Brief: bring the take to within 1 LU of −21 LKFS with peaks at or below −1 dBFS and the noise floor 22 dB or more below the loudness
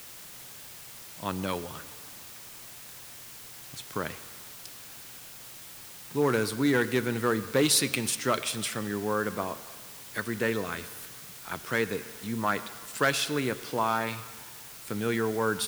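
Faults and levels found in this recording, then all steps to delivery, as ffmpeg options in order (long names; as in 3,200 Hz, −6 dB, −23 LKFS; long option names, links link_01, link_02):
background noise floor −46 dBFS; target noise floor −52 dBFS; integrated loudness −29.5 LKFS; sample peak −10.0 dBFS; target loudness −21.0 LKFS
→ -af "afftdn=noise_reduction=6:noise_floor=-46"
-af "volume=8.5dB"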